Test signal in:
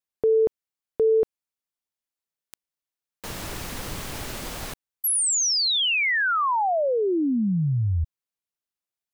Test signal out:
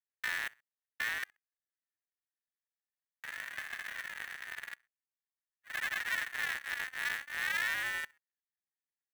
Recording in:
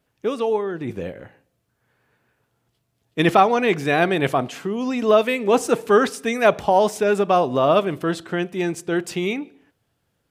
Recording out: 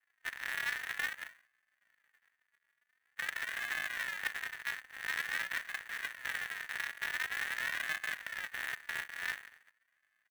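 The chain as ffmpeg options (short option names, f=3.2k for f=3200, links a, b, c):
-af "areverse,acompressor=threshold=-29dB:ratio=20:attack=2:release=49:knee=6:detection=peak,areverse,aecho=1:1:65|130:0.075|0.024,aresample=8000,acrusher=samples=24:mix=1:aa=0.000001:lfo=1:lforange=14.4:lforate=0.47,aresample=44100,highpass=f=1.8k:t=q:w=8,adynamicsmooth=sensitivity=8:basefreq=3.1k,acrusher=bits=2:mode=log:mix=0:aa=0.000001"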